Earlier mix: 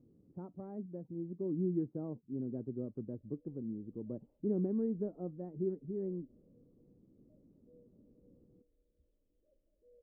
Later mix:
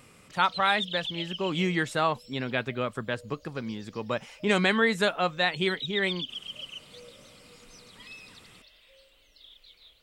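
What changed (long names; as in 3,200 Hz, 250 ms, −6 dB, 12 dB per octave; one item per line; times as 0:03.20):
background: entry −2.90 s
master: remove transistor ladder low-pass 390 Hz, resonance 45%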